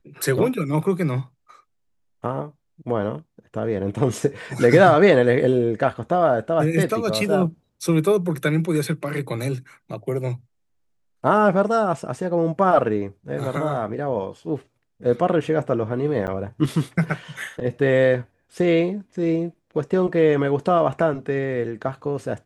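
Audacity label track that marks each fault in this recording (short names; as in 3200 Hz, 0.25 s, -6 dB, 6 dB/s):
16.270000	16.280000	gap 9 ms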